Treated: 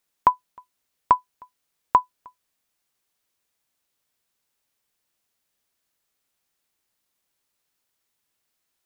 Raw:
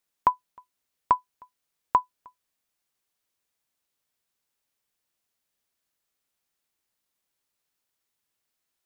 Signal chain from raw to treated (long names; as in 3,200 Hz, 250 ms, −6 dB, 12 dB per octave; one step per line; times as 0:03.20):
level +4 dB